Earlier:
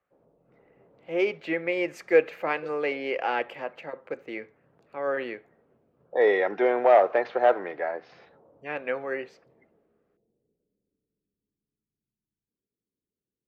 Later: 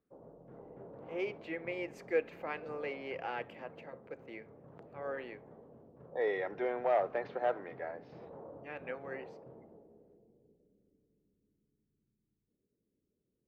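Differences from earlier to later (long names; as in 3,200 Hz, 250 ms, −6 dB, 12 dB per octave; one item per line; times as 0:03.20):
speech −12.0 dB
background +9.5 dB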